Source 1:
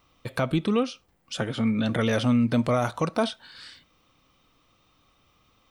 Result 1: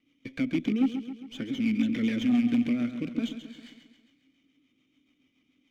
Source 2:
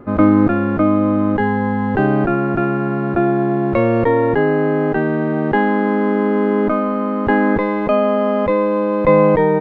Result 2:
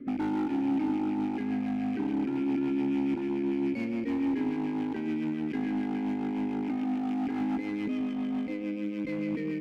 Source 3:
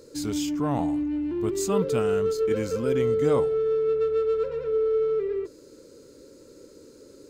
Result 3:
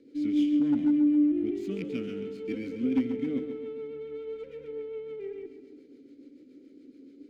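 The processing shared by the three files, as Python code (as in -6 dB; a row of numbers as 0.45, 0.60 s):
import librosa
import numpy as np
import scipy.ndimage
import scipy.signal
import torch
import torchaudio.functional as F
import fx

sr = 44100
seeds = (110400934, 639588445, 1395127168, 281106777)

p1 = fx.rattle_buzz(x, sr, strikes_db=-24.0, level_db=-23.0)
p2 = fx.high_shelf(p1, sr, hz=5600.0, db=-10.0)
p3 = fx.over_compress(p2, sr, threshold_db=-23.0, ratio=-0.5)
p4 = p2 + (p3 * librosa.db_to_amplitude(-2.0))
p5 = fx.vowel_filter(p4, sr, vowel='i')
p6 = fx.rotary(p5, sr, hz=7.0)
p7 = np.clip(p6, -10.0 ** (-23.5 / 20.0), 10.0 ** (-23.5 / 20.0))
p8 = p7 + fx.echo_feedback(p7, sr, ms=135, feedback_pct=55, wet_db=-10, dry=0)
p9 = fx.running_max(p8, sr, window=3)
y = p9 * 10.0 ** (-30 / 20.0) / np.sqrt(np.mean(np.square(p9)))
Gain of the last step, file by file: +4.0, -3.0, +3.5 dB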